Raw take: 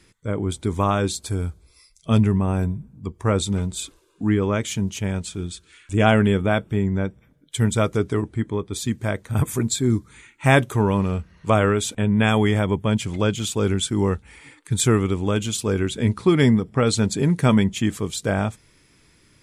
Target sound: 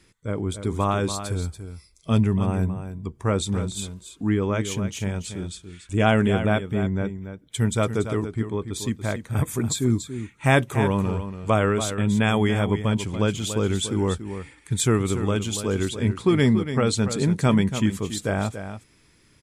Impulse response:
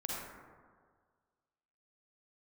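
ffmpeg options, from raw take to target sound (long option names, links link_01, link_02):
-af "aecho=1:1:285:0.316,volume=-2.5dB"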